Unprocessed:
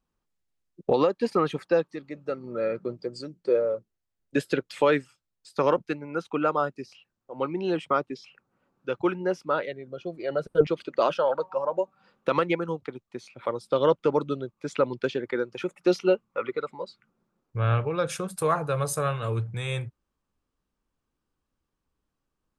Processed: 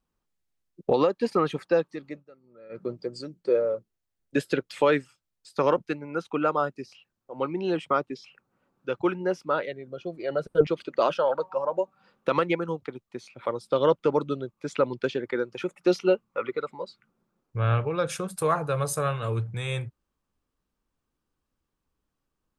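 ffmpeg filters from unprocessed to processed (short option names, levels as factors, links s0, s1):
-filter_complex "[0:a]asplit=3[s0][s1][s2];[s0]atrim=end=2.25,asetpts=PTS-STARTPTS,afade=t=out:st=2.13:d=0.12:silence=0.0841395[s3];[s1]atrim=start=2.25:end=2.69,asetpts=PTS-STARTPTS,volume=0.0841[s4];[s2]atrim=start=2.69,asetpts=PTS-STARTPTS,afade=t=in:d=0.12:silence=0.0841395[s5];[s3][s4][s5]concat=n=3:v=0:a=1"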